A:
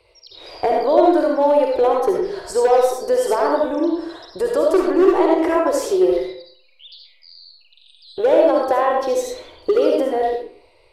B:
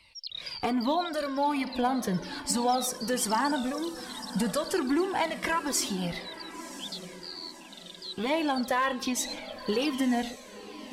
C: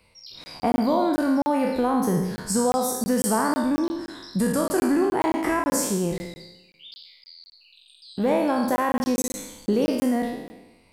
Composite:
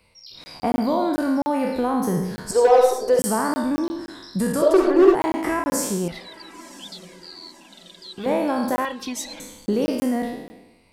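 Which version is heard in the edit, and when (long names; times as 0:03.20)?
C
0:02.51–0:03.19: punch in from A
0:04.62–0:05.15: punch in from A
0:06.08–0:08.26: punch in from B
0:08.85–0:09.40: punch in from B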